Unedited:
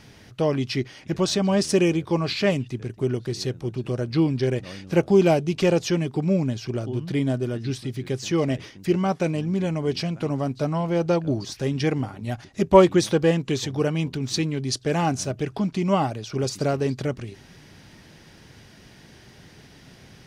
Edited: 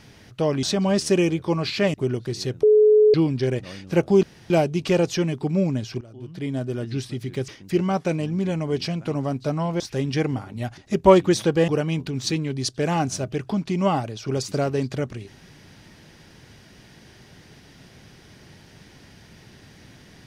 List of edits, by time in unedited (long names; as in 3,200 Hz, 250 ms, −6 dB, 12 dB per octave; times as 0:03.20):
0:00.63–0:01.26: remove
0:02.57–0:02.94: remove
0:03.63–0:04.14: beep over 426 Hz −11 dBFS
0:05.23: splice in room tone 0.27 s
0:06.74–0:07.60: fade in, from −21.5 dB
0:08.21–0:08.63: remove
0:10.95–0:11.47: remove
0:13.35–0:13.75: remove